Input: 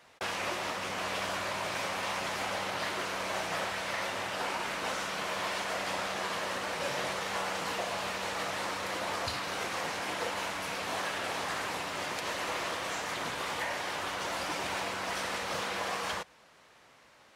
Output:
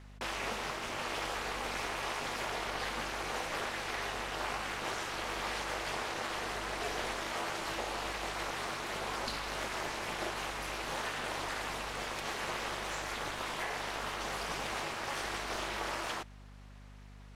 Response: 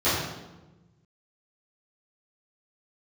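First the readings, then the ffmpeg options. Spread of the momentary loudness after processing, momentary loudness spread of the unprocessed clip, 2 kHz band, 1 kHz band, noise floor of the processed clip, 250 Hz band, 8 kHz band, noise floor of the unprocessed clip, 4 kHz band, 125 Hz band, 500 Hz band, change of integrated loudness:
2 LU, 1 LU, −3.0 dB, −3.0 dB, −52 dBFS, −2.0 dB, −3.0 dB, −60 dBFS, −3.0 dB, −0.5 dB, −3.5 dB, −3.0 dB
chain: -af "aeval=exprs='val(0)*sin(2*PI*140*n/s)':channel_layout=same,aeval=exprs='val(0)+0.00282*(sin(2*PI*50*n/s)+sin(2*PI*2*50*n/s)/2+sin(2*PI*3*50*n/s)/3+sin(2*PI*4*50*n/s)/4+sin(2*PI*5*50*n/s)/5)':channel_layout=same"

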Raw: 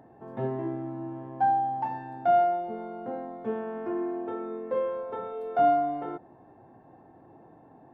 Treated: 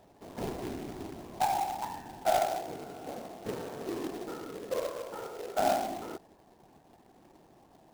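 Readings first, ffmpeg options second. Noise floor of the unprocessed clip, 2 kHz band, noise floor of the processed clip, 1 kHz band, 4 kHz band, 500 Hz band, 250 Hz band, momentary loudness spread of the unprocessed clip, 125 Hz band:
−55 dBFS, 0.0 dB, −61 dBFS, −6.0 dB, can't be measured, −5.5 dB, −6.0 dB, 13 LU, −6.0 dB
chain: -af "afftfilt=real='hypot(re,im)*cos(2*PI*random(0))':imag='hypot(re,im)*sin(2*PI*random(1))':win_size=512:overlap=0.75,acrusher=bits=2:mode=log:mix=0:aa=0.000001"

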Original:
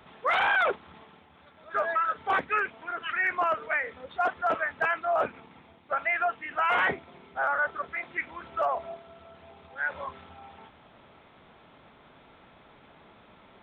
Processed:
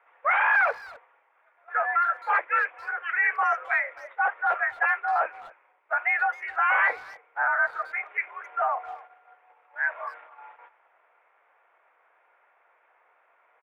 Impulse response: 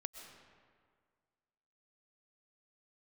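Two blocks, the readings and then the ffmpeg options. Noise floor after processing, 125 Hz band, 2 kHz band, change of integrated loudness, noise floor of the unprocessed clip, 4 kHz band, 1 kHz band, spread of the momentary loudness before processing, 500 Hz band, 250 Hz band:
−66 dBFS, below −20 dB, +4.5 dB, +3.0 dB, −57 dBFS, can't be measured, +2.5 dB, 12 LU, −4.0 dB, below −20 dB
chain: -filter_complex "[0:a]asplit=2[link_01][link_02];[link_02]acrusher=bits=4:mode=log:mix=0:aa=0.000001,volume=-9.5dB[link_03];[link_01][link_03]amix=inputs=2:normalize=0,tiltshelf=frequency=1100:gain=-4,highpass=frequency=430:width_type=q:width=0.5412,highpass=frequency=430:width_type=q:width=1.307,lowpass=frequency=2200:width_type=q:width=0.5176,lowpass=frequency=2200:width_type=q:width=0.7071,lowpass=frequency=2200:width_type=q:width=1.932,afreqshift=70,agate=range=-9dB:threshold=-48dB:ratio=16:detection=peak,asplit=2[link_04][link_05];[link_05]adelay=260,highpass=300,lowpass=3400,asoftclip=type=hard:threshold=-21dB,volume=-20dB[link_06];[link_04][link_06]amix=inputs=2:normalize=0"

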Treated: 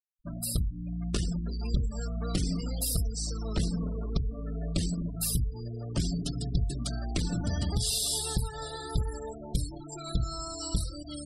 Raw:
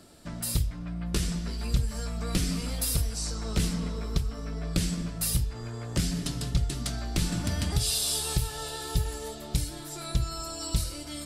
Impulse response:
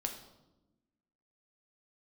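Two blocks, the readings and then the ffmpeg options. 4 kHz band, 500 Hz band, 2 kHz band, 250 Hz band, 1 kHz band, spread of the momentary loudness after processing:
−3.0 dB, −1.0 dB, −7.0 dB, −0.5 dB, −2.5 dB, 6 LU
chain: -af "aeval=exprs='clip(val(0),-1,0.0501)':channel_layout=same,adynamicequalizer=threshold=0.00282:dfrequency=2400:dqfactor=1.8:tfrequency=2400:tqfactor=1.8:attack=5:release=100:ratio=0.375:range=1.5:mode=cutabove:tftype=bell,afftfilt=real='re*gte(hypot(re,im),0.02)':imag='im*gte(hypot(re,im),0.02)':win_size=1024:overlap=0.75"

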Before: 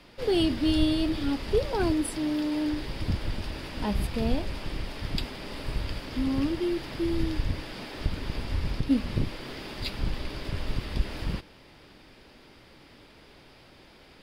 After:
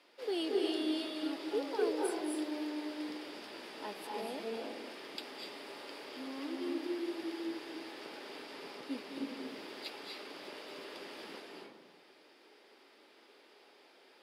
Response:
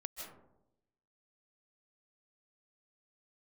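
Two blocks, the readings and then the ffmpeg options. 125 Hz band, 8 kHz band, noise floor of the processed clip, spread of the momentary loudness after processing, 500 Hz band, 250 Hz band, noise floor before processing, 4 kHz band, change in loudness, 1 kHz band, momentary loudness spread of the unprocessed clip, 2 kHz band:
below −35 dB, −7.5 dB, −62 dBFS, 13 LU, −6.0 dB, −10.5 dB, −54 dBFS, −7.5 dB, −9.5 dB, −6.0 dB, 11 LU, −7.5 dB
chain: -filter_complex "[0:a]highpass=frequency=320:width=0.5412,highpass=frequency=320:width=1.3066[link_01];[1:a]atrim=start_sample=2205,asetrate=28224,aresample=44100[link_02];[link_01][link_02]afir=irnorm=-1:irlink=0,volume=-7.5dB"

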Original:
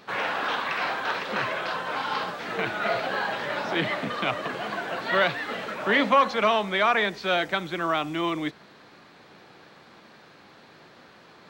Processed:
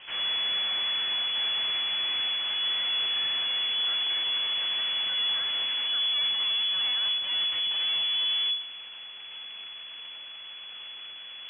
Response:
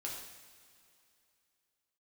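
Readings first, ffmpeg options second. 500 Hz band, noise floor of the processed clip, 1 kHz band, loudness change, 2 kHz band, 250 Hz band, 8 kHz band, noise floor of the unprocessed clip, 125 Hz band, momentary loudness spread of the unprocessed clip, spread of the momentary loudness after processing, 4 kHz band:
−23.0 dB, −43 dBFS, −17.5 dB, +1.0 dB, −9.0 dB, below −20 dB, below −30 dB, −52 dBFS, below −20 dB, 9 LU, 15 LU, +12.0 dB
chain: -filter_complex "[0:a]lowshelf=frequency=600:width_type=q:width=1.5:gain=6.5,aeval=exprs='(tanh(50.1*val(0)+0.4)-tanh(0.4))/50.1':channel_layout=same,aeval=exprs='abs(val(0))':channel_layout=same,asplit=2[link_01][link_02];[1:a]atrim=start_sample=2205[link_03];[link_02][link_03]afir=irnorm=-1:irlink=0,volume=-9dB[link_04];[link_01][link_04]amix=inputs=2:normalize=0,lowpass=frequency=2900:width_type=q:width=0.5098,lowpass=frequency=2900:width_type=q:width=0.6013,lowpass=frequency=2900:width_type=q:width=0.9,lowpass=frequency=2900:width_type=q:width=2.563,afreqshift=-3400,volume=3.5dB"

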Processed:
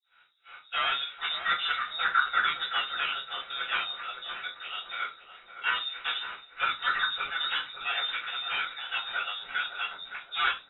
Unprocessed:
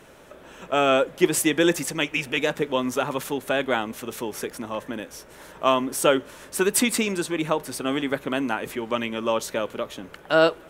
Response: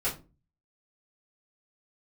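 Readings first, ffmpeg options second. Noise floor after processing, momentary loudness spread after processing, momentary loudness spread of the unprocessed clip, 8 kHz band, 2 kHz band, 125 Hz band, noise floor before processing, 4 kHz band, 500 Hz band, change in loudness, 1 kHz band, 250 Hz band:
−58 dBFS, 9 LU, 13 LU, below −40 dB, 0.0 dB, below −25 dB, −48 dBFS, +1.5 dB, −26.5 dB, −5.5 dB, −3.5 dB, −34.0 dB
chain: -filter_complex "[0:a]equalizer=frequency=500:width=1.3:gain=-6,acrossover=split=420[link_01][link_02];[link_01]aeval=exprs='val(0)*(1-1/2+1/2*cos(2*PI*3.1*n/s))':channel_layout=same[link_03];[link_02]aeval=exprs='val(0)*(1-1/2-1/2*cos(2*PI*3.1*n/s))':channel_layout=same[link_04];[link_03][link_04]amix=inputs=2:normalize=0,acrossover=split=560|2200[link_05][link_06][link_07];[link_06]asoftclip=type=hard:threshold=-24.5dB[link_08];[link_05][link_08][link_07]amix=inputs=3:normalize=0,acrossover=split=3000[link_09][link_10];[link_10]acompressor=threshold=-44dB:ratio=4:attack=1:release=60[link_11];[link_09][link_11]amix=inputs=2:normalize=0,highpass=83,aresample=16000,aeval=exprs='0.0501*(abs(mod(val(0)/0.0501+3,4)-2)-1)':channel_layout=same,aresample=44100,aeval=exprs='val(0)+0.002*(sin(2*PI*60*n/s)+sin(2*PI*2*60*n/s)/2+sin(2*PI*3*60*n/s)/3+sin(2*PI*4*60*n/s)/4+sin(2*PI*5*60*n/s)/5)':channel_layout=same,lowpass=frequency=3300:width_type=q:width=0.5098,lowpass=frequency=3300:width_type=q:width=0.6013,lowpass=frequency=3300:width_type=q:width=0.9,lowpass=frequency=3300:width_type=q:width=2.563,afreqshift=-3900,equalizer=frequency=1400:width=1.8:gain=14.5,agate=range=-33dB:threshold=-39dB:ratio=3:detection=peak,asplit=2[link_12][link_13];[link_13]adelay=565,lowpass=frequency=850:poles=1,volume=-5.5dB,asplit=2[link_14][link_15];[link_15]adelay=565,lowpass=frequency=850:poles=1,volume=0.5,asplit=2[link_16][link_17];[link_17]adelay=565,lowpass=frequency=850:poles=1,volume=0.5,asplit=2[link_18][link_19];[link_19]adelay=565,lowpass=frequency=850:poles=1,volume=0.5,asplit=2[link_20][link_21];[link_21]adelay=565,lowpass=frequency=850:poles=1,volume=0.5,asplit=2[link_22][link_23];[link_23]adelay=565,lowpass=frequency=850:poles=1,volume=0.5[link_24];[link_12][link_14][link_16][link_18][link_20][link_22][link_24]amix=inputs=7:normalize=0[link_25];[1:a]atrim=start_sample=2205,afade=type=out:start_time=0.19:duration=0.01,atrim=end_sample=8820[link_26];[link_25][link_26]afir=irnorm=-1:irlink=0,volume=-6.5dB"

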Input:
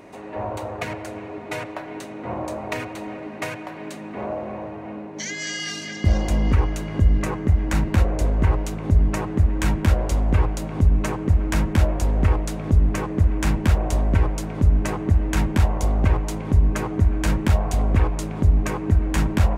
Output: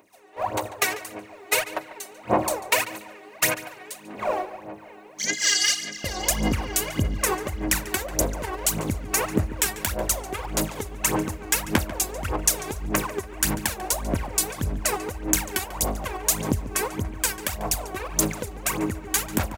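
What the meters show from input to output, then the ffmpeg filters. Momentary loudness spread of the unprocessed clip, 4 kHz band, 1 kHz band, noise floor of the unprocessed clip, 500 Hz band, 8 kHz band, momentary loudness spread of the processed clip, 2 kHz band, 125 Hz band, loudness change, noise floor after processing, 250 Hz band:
12 LU, +7.5 dB, +1.0 dB, −36 dBFS, −0.5 dB, +12.5 dB, 9 LU, +3.5 dB, −12.0 dB, −2.5 dB, −46 dBFS, −4.5 dB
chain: -filter_complex "[0:a]agate=range=-14dB:threshold=-28dB:ratio=16:detection=peak,acompressor=threshold=-22dB:ratio=6,aemphasis=mode=production:type=riaa,dynaudnorm=framelen=320:gausssize=3:maxgain=9.5dB,aphaser=in_gain=1:out_gain=1:delay=2.7:decay=0.76:speed=1.7:type=sinusoidal,asplit=2[link_01][link_02];[link_02]adelay=143,lowpass=frequency=4900:poles=1,volume=-15dB,asplit=2[link_03][link_04];[link_04]adelay=143,lowpass=frequency=4900:poles=1,volume=0.32,asplit=2[link_05][link_06];[link_06]adelay=143,lowpass=frequency=4900:poles=1,volume=0.32[link_07];[link_03][link_05][link_07]amix=inputs=3:normalize=0[link_08];[link_01][link_08]amix=inputs=2:normalize=0,volume=-5dB"

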